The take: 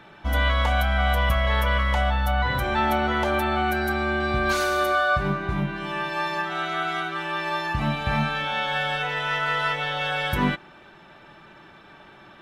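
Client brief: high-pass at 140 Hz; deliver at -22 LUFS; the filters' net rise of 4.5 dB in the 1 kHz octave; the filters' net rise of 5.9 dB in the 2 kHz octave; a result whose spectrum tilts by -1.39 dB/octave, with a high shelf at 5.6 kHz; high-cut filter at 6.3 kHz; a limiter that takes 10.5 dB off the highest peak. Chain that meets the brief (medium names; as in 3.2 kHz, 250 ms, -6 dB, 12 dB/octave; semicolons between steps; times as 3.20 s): high-pass 140 Hz; low-pass 6.3 kHz; peaking EQ 1 kHz +4 dB; peaking EQ 2 kHz +5.5 dB; treble shelf 5.6 kHz +7 dB; trim +3 dB; peak limiter -14.5 dBFS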